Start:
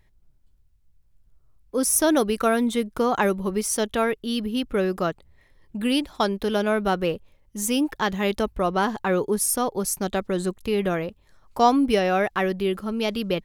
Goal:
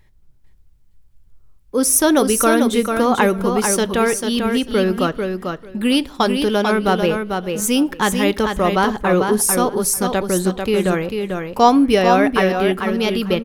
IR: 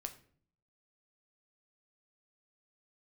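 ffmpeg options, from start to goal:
-filter_complex "[0:a]bandreject=f=660:w=12,aecho=1:1:444|888|1332:0.531|0.0796|0.0119,asplit=2[a][b];[1:a]atrim=start_sample=2205[c];[b][c]afir=irnorm=-1:irlink=0,volume=-6dB[d];[a][d]amix=inputs=2:normalize=0,volume=3.5dB"

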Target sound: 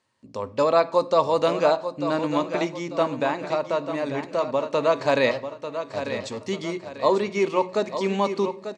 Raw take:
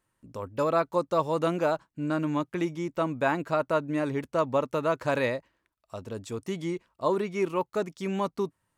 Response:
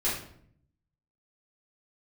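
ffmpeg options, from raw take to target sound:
-filter_complex "[0:a]asettb=1/sr,asplit=3[a][b][c];[a]atrim=end=3.214[d];[b]atrim=start=3.21:end=4.69,asetpts=PTS-STARTPTS,afade=t=in:d=0.004:c=qsin,afade=t=out:st=1.476:d=0.004:c=qsin,acompressor=threshold=-35dB:ratio=1.5[e];[c]atrim=start=4.686[f];[d][e]acrossfade=d=0.004:c1=hsin:c2=qsin[g];[g][f]acrossfade=d=0.004:c1=qsin:c2=hsin,asettb=1/sr,asplit=3[h][i][j];[h]atrim=end=5.314[k];[i]atrim=start=5.31:end=6.39,asetpts=PTS-STARTPTS,afade=t=in:d=0.004:c=qsin,afade=t=out:st=1.076:d=0.004:c=qsin,asoftclip=type=hard:threshold=-34.5dB[l];[j]atrim=start=6.386[m];[k][l]acrossfade=d=0.004:c1=hsin:c2=qsin[n];[n][m]acrossfade=d=0.004:c1=qsin:c2=hsin,highpass=130,equalizer=f=160:t=q:w=4:g=-8,equalizer=f=330:t=q:w=4:g=-7,equalizer=f=1.4k:t=q:w=4:g=-7,equalizer=f=4.4k:t=q:w=4:g=7,lowpass=f=7.4k:w=0.5412,lowpass=f=7.4k:w=1.3066,bandreject=f=60:t=h:w=6,bandreject=f=120:t=h:w=6,bandreject=f=180:t=h:w=6,aecho=1:1:893|1786|2679|3572:0.335|0.127|0.0484|0.0184,asplit=2[o][p];[1:a]atrim=start_sample=2205[q];[p][q]afir=irnorm=-1:irlink=0,volume=-22dB[r];[o][r]amix=inputs=2:normalize=0,volume=6.5dB"

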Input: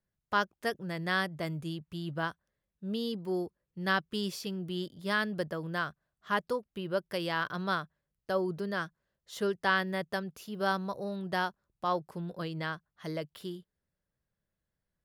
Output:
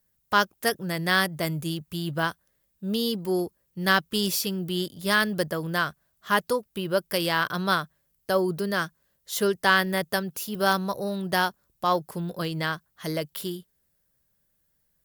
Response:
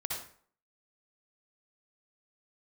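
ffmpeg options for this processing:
-af "acontrast=88,aemphasis=mode=production:type=50fm" -ar 48000 -c:a aac -b:a 128k

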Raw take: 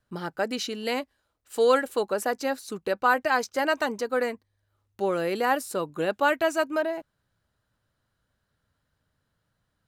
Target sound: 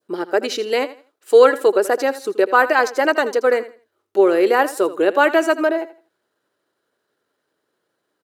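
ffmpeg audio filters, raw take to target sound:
-filter_complex "[0:a]atempo=1.2,highpass=f=370:t=q:w=3.6,adynamicequalizer=threshold=0.0224:dfrequency=1800:dqfactor=0.83:tfrequency=1800:tqfactor=0.83:attack=5:release=100:ratio=0.375:range=2:mode=boostabove:tftype=bell,asplit=2[a][b];[b]aecho=0:1:81|162|243:0.168|0.042|0.0105[c];[a][c]amix=inputs=2:normalize=0,volume=4dB"

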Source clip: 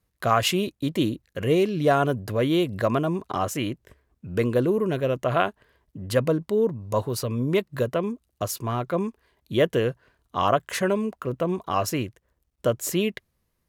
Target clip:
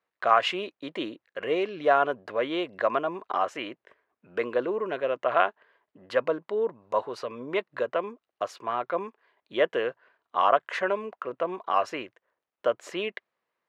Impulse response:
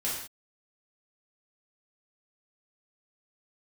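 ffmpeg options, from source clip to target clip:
-af "highpass=600,lowpass=2.4k,volume=2dB"

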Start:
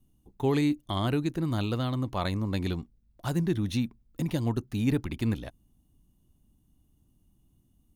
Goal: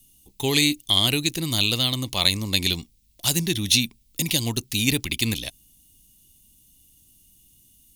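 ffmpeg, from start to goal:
-af "aexciter=amount=7.9:drive=6.7:freq=2.2k,volume=1dB"

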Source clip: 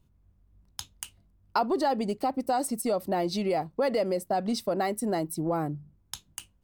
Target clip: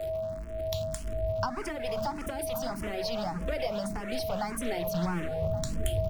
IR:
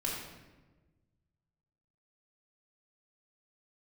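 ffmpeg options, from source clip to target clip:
-filter_complex "[0:a]aeval=exprs='val(0)+0.5*0.0119*sgn(val(0))':c=same,highshelf=f=8.3k:g=-4,bandreject=f=50:t=h:w=6,bandreject=f=100:t=h:w=6,bandreject=f=150:t=h:w=6,bandreject=f=200:t=h:w=6,bandreject=f=250:t=h:w=6,asubboost=boost=8.5:cutoff=200,acrossover=split=120|470|3400[a][b][c][d];[b]aeval=exprs='0.0133*(abs(mod(val(0)/0.0133+3,4)-2)-1)':c=same[e];[a][e][c][d]amix=inputs=4:normalize=0,aeval=exprs='val(0)+0.0224*sin(2*PI*590*n/s)':c=same,acrossover=split=360[f][g];[g]acompressor=threshold=-33dB:ratio=6[h];[f][h]amix=inputs=2:normalize=0,asplit=2[i][j];[j]adelay=1224,volume=-13dB,highshelf=f=4k:g=-27.6[k];[i][k]amix=inputs=2:normalize=0,asetrate=48000,aresample=44100,asplit=2[l][m];[m]afreqshift=1.7[n];[l][n]amix=inputs=2:normalize=1,volume=4dB"

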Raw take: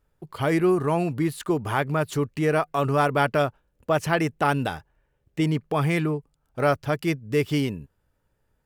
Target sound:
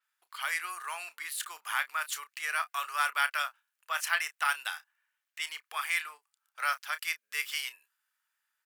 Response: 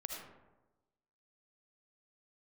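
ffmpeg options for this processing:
-filter_complex "[0:a]highpass=f=1.3k:w=0.5412,highpass=f=1.3k:w=1.3066,asplit=2[a][b];[b]adelay=31,volume=-13dB[c];[a][c]amix=inputs=2:normalize=0,adynamicequalizer=threshold=0.00447:dfrequency=7000:dqfactor=0.7:tfrequency=7000:tqfactor=0.7:attack=5:release=100:ratio=0.375:range=2.5:mode=boostabove:tftype=highshelf"

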